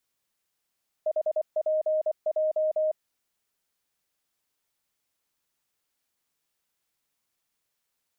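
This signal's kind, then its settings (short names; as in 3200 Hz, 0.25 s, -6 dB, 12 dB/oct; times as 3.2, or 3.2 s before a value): Morse "HPJ" 24 wpm 622 Hz -22 dBFS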